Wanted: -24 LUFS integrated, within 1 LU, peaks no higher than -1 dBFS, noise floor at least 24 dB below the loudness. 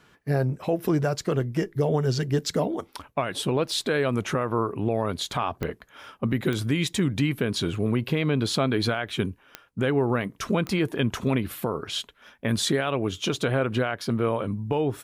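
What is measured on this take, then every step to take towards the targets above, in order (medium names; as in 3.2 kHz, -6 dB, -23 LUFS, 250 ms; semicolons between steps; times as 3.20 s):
clicks found 4; loudness -26.5 LUFS; peak level -14.0 dBFS; loudness target -24.0 LUFS
-> de-click; trim +2.5 dB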